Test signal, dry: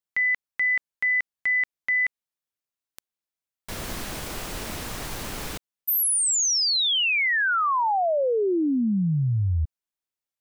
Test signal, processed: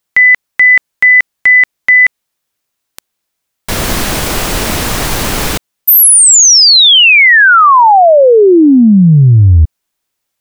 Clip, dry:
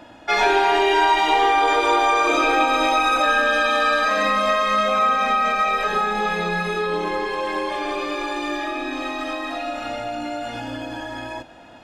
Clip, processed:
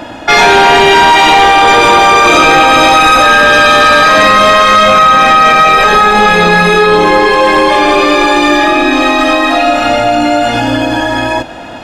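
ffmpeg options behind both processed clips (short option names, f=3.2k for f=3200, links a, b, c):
-af "apsyclip=20.5dB,volume=-1.5dB"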